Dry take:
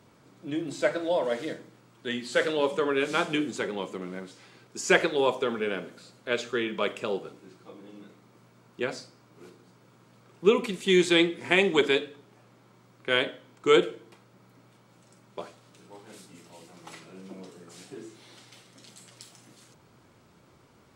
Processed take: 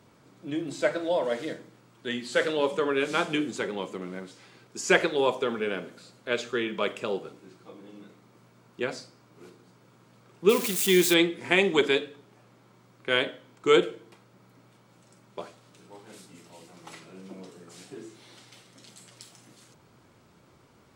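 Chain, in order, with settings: 10.49–11.14 s: zero-crossing glitches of -20.5 dBFS

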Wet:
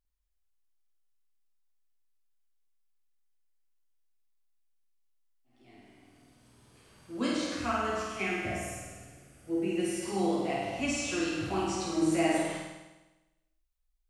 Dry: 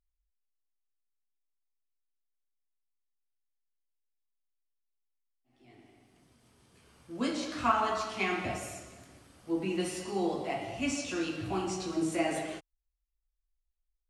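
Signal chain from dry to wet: 7.56–10.03 s: fifteen-band graphic EQ 250 Hz -4 dB, 1 kHz -12 dB, 4 kHz -11 dB; flutter echo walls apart 8.7 m, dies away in 1.1 s

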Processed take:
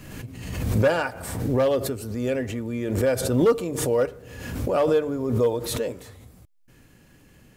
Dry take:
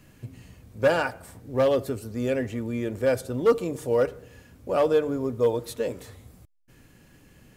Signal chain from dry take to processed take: swell ahead of each attack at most 45 dB/s

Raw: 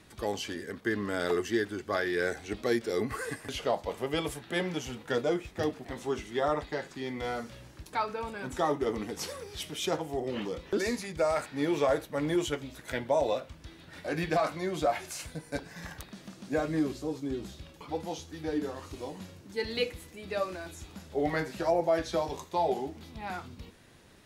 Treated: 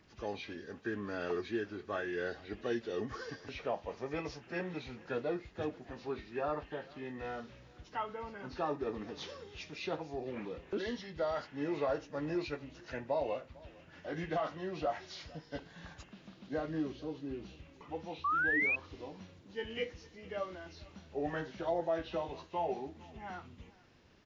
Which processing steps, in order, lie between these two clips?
knee-point frequency compression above 1.5 kHz 1.5:1; delay 451 ms -23 dB; painted sound rise, 18.24–18.76 s, 1.1–2.6 kHz -24 dBFS; trim -7 dB

